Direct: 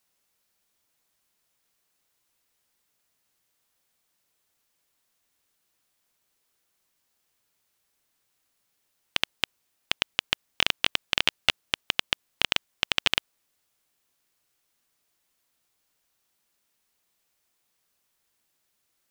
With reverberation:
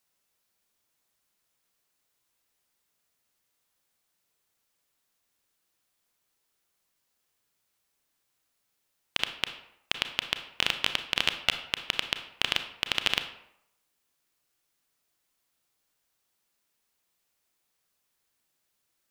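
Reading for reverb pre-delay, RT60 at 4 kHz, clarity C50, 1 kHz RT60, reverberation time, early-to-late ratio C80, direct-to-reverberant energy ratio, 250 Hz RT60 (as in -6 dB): 29 ms, 0.50 s, 10.0 dB, 0.75 s, 0.75 s, 13.0 dB, 8.0 dB, 0.70 s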